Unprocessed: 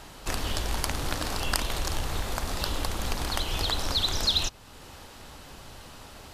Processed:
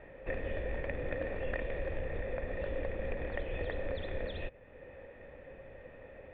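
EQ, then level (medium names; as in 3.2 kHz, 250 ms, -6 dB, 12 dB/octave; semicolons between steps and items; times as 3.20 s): cascade formant filter e; bass shelf 330 Hz +5 dB; dynamic bell 970 Hz, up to -3 dB, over -56 dBFS, Q 0.96; +7.5 dB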